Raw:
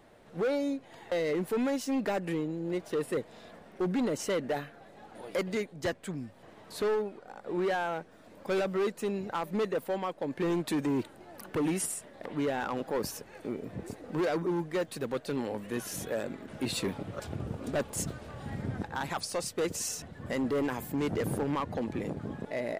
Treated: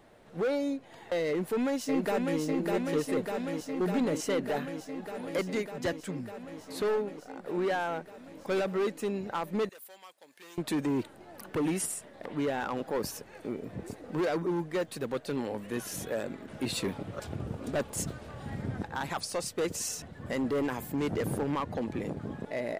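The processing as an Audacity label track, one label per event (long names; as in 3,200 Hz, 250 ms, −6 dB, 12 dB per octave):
1.280000	2.400000	delay throw 600 ms, feedback 80%, level −3 dB
9.690000	10.580000	first difference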